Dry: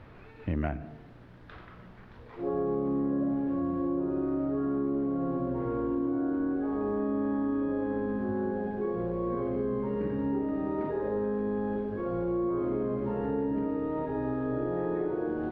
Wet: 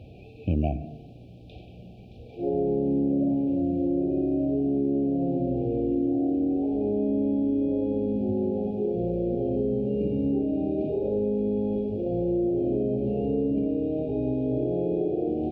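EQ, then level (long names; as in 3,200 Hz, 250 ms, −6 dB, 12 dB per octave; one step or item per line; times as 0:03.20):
high-pass filter 65 Hz
linear-phase brick-wall band-stop 820–2,300 Hz
low-shelf EQ 84 Hz +8 dB
+4.0 dB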